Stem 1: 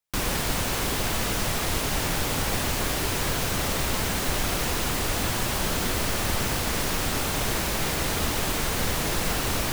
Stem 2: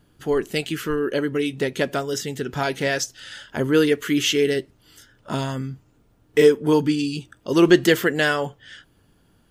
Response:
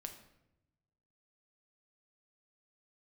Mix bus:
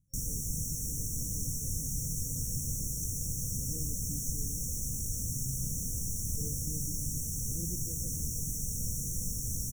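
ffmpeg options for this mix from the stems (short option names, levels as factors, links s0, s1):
-filter_complex "[0:a]asplit=2[s0][s1];[s1]highpass=f=720:p=1,volume=7.08,asoftclip=type=tanh:threshold=0.251[s2];[s0][s2]amix=inputs=2:normalize=0,lowpass=f=3600:p=1,volume=0.501,volume=0.841[s3];[1:a]volume=0.282[s4];[s3][s4]amix=inputs=2:normalize=0,afftfilt=real='re*(1-between(b*sr/4096,530,5500))':imag='im*(1-between(b*sr/4096,530,5500))':win_size=4096:overlap=0.75,firequalizer=gain_entry='entry(130,0);entry(390,-29);entry(890,-4)':delay=0.05:min_phase=1"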